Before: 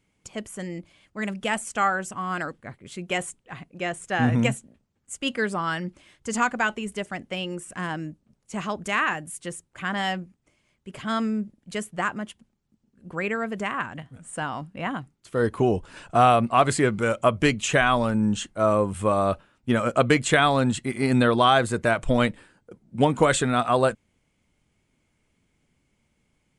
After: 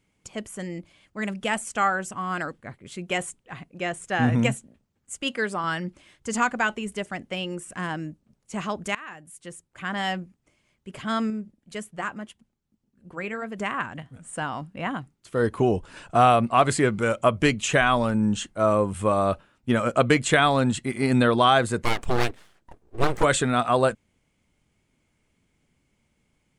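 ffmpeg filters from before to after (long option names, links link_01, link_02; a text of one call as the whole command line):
ffmpeg -i in.wav -filter_complex "[0:a]asettb=1/sr,asplit=3[link_01][link_02][link_03];[link_01]atrim=end=5.234[link_04];[link_02]atrim=start=5.23:end=5.64,asetpts=PTS-STARTPTS,afade=type=in:duration=0.004:curve=qsin,afade=type=out:start_time=0.406:duration=0.004:curve=qsin,lowshelf=frequency=170:gain=-9[link_05];[link_03]atrim=start=5.636[link_06];[link_04][link_05]acrossfade=duration=0.004:curve1=hsin:curve2=qsin[link_07];[link_07][link_06]acrossfade=duration=0.004:curve1=qsin:curve2=hsin,asettb=1/sr,asplit=3[link_08][link_09][link_10];[link_08]atrim=end=11.304[link_11];[link_09]atrim=start=11.3:end=13.59,asetpts=PTS-STARTPTS,afade=type=in:duration=0.004:curve=qsin,afade=type=out:start_time=2.286:duration=0.004:curve=qsin,flanger=delay=0.8:depth=3.4:regen=-74:speed=1.8:shape=triangular[link_12];[link_10]atrim=start=13.586[link_13];[link_11][link_12]acrossfade=duration=0.004:curve1=hsin:curve2=qsin[link_14];[link_14][link_13]acrossfade=duration=0.004:curve1=qsin:curve2=hsin,asplit=3[link_15][link_16][link_17];[link_15]afade=type=out:start_time=21.83:duration=0.02[link_18];[link_16]aeval=exprs='abs(val(0))':channel_layout=same,afade=type=in:start_time=21.83:duration=0.02,afade=type=out:start_time=23.22:duration=0.02[link_19];[link_17]afade=type=in:start_time=23.22:duration=0.02[link_20];[link_18][link_19][link_20]amix=inputs=3:normalize=0,asplit=2[link_21][link_22];[link_21]atrim=end=8.95,asetpts=PTS-STARTPTS,afade=type=out:start_time=8.946:duration=0.004:curve=hsin:silence=0.0841395[link_23];[link_22]atrim=start=8.95,asetpts=PTS-STARTPTS,afade=type=in:duration=1.21:silence=0.0841395[link_24];[link_23][link_24]concat=n=2:v=0:a=1" out.wav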